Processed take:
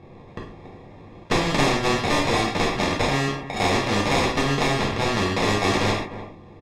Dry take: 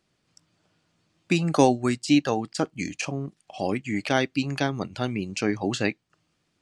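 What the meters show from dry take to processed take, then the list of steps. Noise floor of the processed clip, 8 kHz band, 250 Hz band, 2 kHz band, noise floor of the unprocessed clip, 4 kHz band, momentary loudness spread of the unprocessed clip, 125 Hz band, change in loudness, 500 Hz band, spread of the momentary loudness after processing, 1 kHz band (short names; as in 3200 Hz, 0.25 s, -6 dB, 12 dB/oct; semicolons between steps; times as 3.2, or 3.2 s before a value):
-45 dBFS, +4.5 dB, 0.0 dB, +7.0 dB, -73 dBFS, +8.5 dB, 10 LU, +4.0 dB, +4.0 dB, +3.5 dB, 18 LU, +6.5 dB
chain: one-sided fold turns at -21.5 dBFS; comb 2.5 ms, depth 40%; sample-rate reducer 1500 Hz, jitter 0%; compressor 2:1, threshold -26 dBFS, peak gain reduction 8 dB; LPF 4700 Hz 12 dB/oct; high shelf 3100 Hz -11.5 dB; notch 1300 Hz, Q 8.6; outdoor echo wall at 52 m, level -25 dB; non-linear reverb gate 0.17 s falling, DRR -4 dB; spectral compressor 2:1; gain +4.5 dB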